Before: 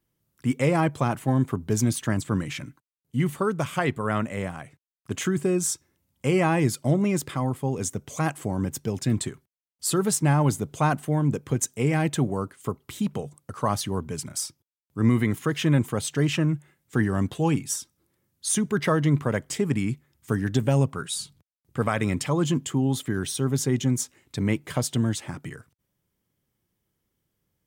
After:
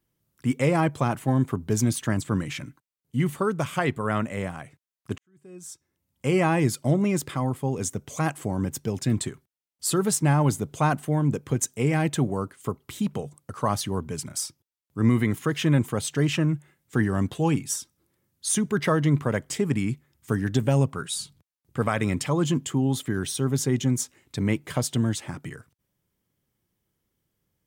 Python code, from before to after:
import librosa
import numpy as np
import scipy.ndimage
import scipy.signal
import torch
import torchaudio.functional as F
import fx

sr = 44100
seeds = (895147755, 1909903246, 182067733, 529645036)

y = fx.edit(x, sr, fx.fade_in_span(start_s=5.18, length_s=1.16, curve='qua'), tone=tone)